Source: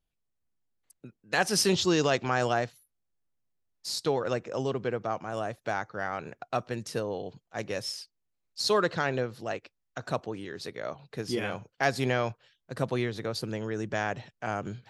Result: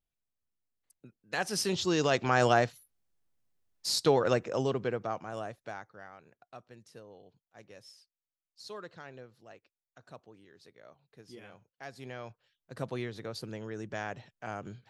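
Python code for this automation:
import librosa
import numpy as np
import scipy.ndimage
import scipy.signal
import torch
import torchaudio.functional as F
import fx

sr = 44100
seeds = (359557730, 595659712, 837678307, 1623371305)

y = fx.gain(x, sr, db=fx.line((1.7, -6.5), (2.47, 3.0), (4.29, 3.0), (5.45, -6.0), (6.22, -19.0), (11.89, -19.0), (12.78, -7.0)))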